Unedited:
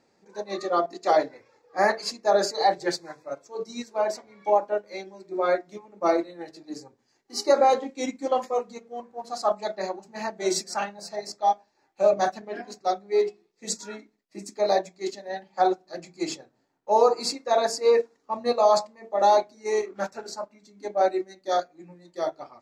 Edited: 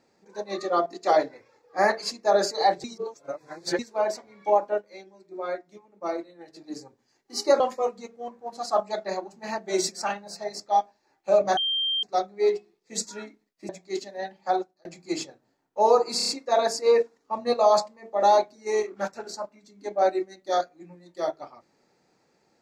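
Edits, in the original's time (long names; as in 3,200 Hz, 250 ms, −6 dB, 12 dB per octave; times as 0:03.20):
0:02.84–0:03.79: reverse
0:04.80–0:06.56: duck −8 dB, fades 0.30 s exponential
0:07.60–0:08.32: remove
0:12.29–0:12.75: beep over 3,170 Hz −23 dBFS
0:14.41–0:14.80: remove
0:15.49–0:15.96: fade out
0:17.28: stutter 0.03 s, 5 plays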